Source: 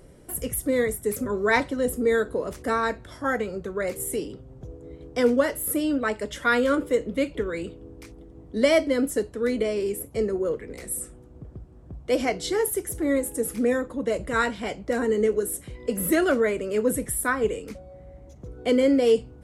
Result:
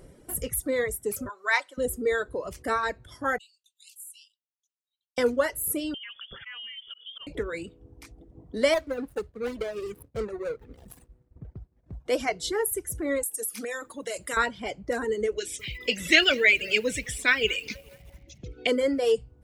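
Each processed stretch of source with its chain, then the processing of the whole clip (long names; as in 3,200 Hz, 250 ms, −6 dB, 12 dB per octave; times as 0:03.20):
0:01.29–0:01.78: high-pass filter 1,000 Hz + notch filter 3,400 Hz, Q 25
0:03.38–0:05.18: downward expander −33 dBFS + Chebyshev high-pass with heavy ripple 2,700 Hz, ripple 3 dB + downward compressor 2 to 1, threshold −48 dBFS
0:05.94–0:07.27: voice inversion scrambler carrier 3,400 Hz + volume swells 206 ms + downward compressor 8 to 1, threshold −37 dBFS
0:08.74–0:12.06: running median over 41 samples + downward expander −44 dBFS + parametric band 310 Hz −4 dB 0.91 octaves
0:13.23–0:14.37: spectral tilt +4 dB per octave + mains-hum notches 50/100/150/200/250/300 Hz + downward compressor 16 to 1, threshold −26 dBFS
0:15.38–0:18.67: low-pass filter 5,900 Hz 24 dB per octave + high shelf with overshoot 1,700 Hz +13.5 dB, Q 3 + feedback echo at a low word length 212 ms, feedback 55%, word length 6 bits, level −15 dB
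whole clip: reverb reduction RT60 1.4 s; dynamic equaliser 220 Hz, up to −7 dB, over −37 dBFS, Q 0.74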